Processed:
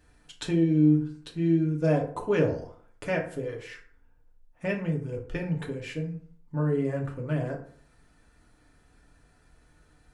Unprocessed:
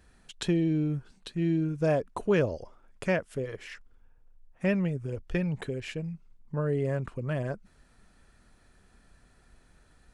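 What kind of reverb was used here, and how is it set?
FDN reverb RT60 0.53 s, low-frequency decay 1×, high-frequency decay 0.55×, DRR -0.5 dB; trim -3 dB

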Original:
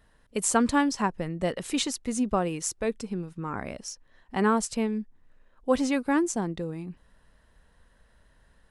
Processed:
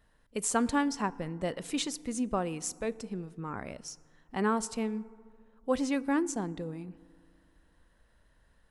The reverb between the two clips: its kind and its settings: FDN reverb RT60 2 s, low-frequency decay 1.2×, high-frequency decay 0.4×, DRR 19 dB; trim -5 dB

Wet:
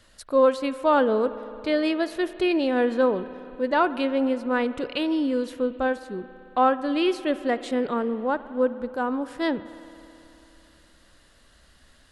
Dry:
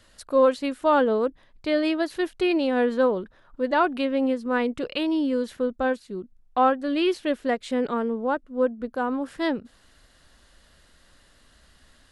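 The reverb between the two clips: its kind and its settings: spring tank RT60 3.2 s, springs 55 ms, chirp 35 ms, DRR 14 dB

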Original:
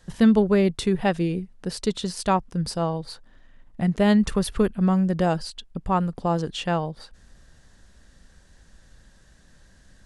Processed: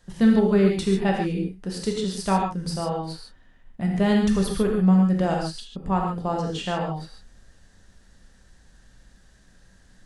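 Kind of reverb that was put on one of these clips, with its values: gated-style reverb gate 170 ms flat, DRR -0.5 dB; trim -4 dB

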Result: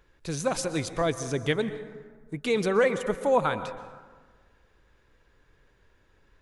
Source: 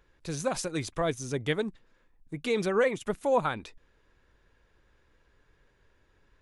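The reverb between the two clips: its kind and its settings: plate-style reverb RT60 1.5 s, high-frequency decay 0.45×, pre-delay 110 ms, DRR 12 dB; trim +2.5 dB

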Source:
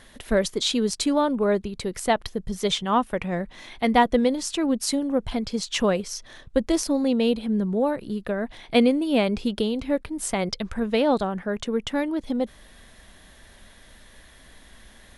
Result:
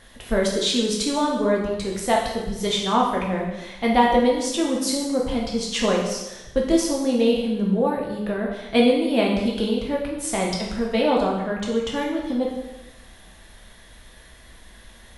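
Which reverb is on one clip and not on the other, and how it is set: plate-style reverb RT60 1 s, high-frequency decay 0.95×, DRR -2.5 dB; trim -2 dB

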